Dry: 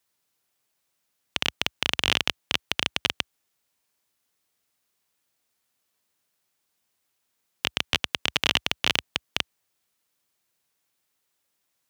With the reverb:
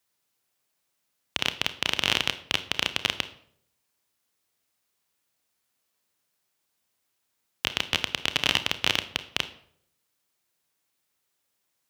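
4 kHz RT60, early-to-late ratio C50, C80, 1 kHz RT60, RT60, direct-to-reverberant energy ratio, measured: 0.45 s, 14.0 dB, 17.5 dB, 0.60 s, 0.65 s, 10.5 dB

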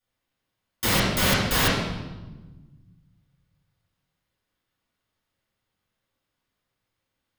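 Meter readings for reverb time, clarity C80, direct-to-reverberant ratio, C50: 1.2 s, 2.5 dB, -12.5 dB, -0.5 dB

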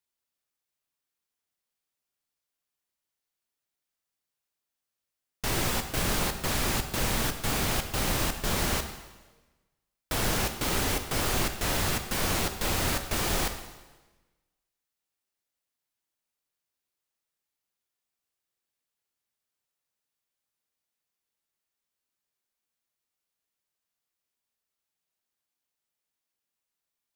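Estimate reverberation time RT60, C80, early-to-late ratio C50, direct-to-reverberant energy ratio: 1.2 s, 10.5 dB, 9.0 dB, 7.0 dB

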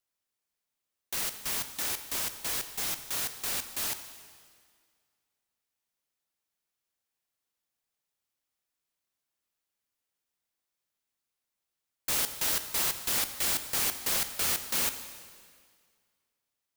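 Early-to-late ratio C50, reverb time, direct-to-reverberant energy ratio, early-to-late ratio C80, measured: 10.5 dB, 1.9 s, 9.0 dB, 11.5 dB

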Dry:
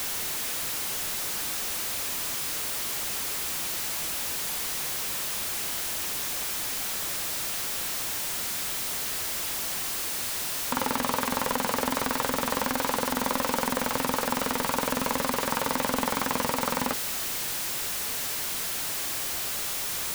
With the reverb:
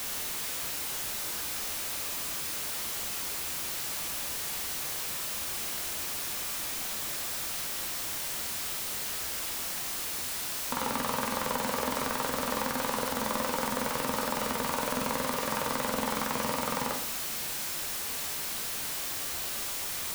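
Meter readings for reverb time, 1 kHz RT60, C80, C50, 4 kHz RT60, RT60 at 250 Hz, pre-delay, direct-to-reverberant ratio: 0.60 s, 0.60 s, 10.5 dB, 8.0 dB, 0.50 s, 0.75 s, 11 ms, 3.5 dB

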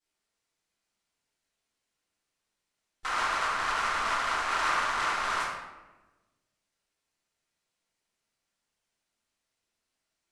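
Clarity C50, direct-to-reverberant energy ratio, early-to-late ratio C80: -0.5 dB, -12.5 dB, 2.5 dB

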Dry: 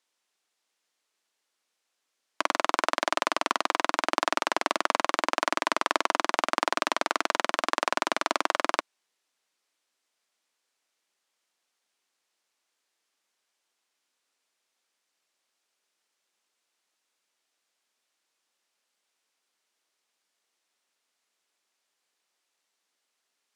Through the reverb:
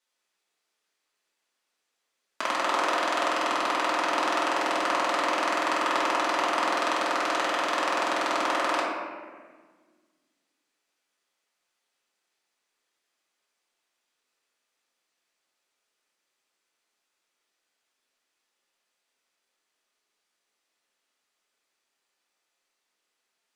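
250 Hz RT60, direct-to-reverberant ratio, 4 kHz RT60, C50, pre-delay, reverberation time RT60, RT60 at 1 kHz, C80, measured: 2.2 s, -7.0 dB, 0.95 s, 0.0 dB, 3 ms, 1.6 s, 1.4 s, 2.0 dB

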